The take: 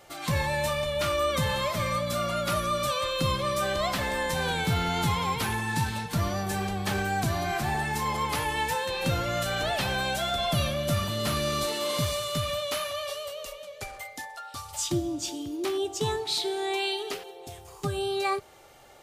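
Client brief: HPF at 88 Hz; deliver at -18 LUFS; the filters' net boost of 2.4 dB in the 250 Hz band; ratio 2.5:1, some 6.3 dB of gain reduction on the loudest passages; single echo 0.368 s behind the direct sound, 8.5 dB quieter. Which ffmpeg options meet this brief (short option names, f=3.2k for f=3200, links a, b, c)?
-af "highpass=88,equalizer=f=250:t=o:g=4,acompressor=threshold=-31dB:ratio=2.5,aecho=1:1:368:0.376,volume=14dB"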